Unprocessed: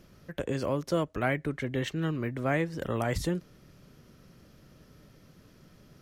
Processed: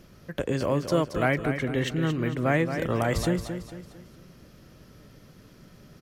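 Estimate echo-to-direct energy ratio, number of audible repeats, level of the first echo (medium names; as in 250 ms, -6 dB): -7.5 dB, 4, -8.5 dB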